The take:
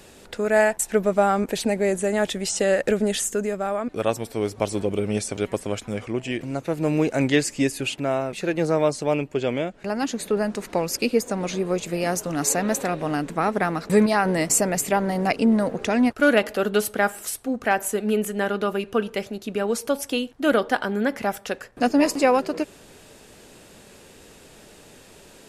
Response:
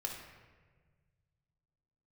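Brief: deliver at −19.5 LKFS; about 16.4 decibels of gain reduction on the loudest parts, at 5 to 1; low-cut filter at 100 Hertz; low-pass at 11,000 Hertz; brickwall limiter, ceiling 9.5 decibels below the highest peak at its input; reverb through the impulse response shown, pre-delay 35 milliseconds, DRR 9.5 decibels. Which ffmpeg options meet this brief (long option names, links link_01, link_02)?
-filter_complex "[0:a]highpass=100,lowpass=11000,acompressor=threshold=-33dB:ratio=5,alimiter=level_in=3.5dB:limit=-24dB:level=0:latency=1,volume=-3.5dB,asplit=2[link_01][link_02];[1:a]atrim=start_sample=2205,adelay=35[link_03];[link_02][link_03]afir=irnorm=-1:irlink=0,volume=-10dB[link_04];[link_01][link_04]amix=inputs=2:normalize=0,volume=18.5dB"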